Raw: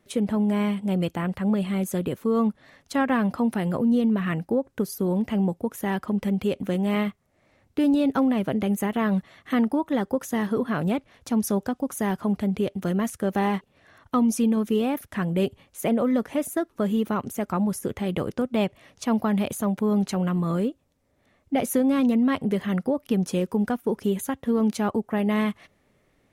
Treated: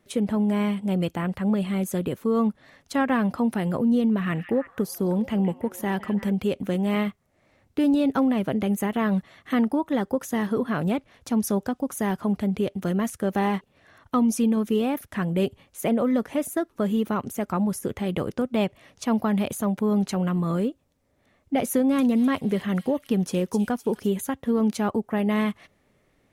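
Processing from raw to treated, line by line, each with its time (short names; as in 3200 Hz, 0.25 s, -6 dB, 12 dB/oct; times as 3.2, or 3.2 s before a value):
4.18–6.33 delay with a stepping band-pass 0.166 s, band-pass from 2500 Hz, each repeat -0.7 oct, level -8.5 dB
21.73–24.09 thin delay 0.255 s, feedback 42%, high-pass 4600 Hz, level -3.5 dB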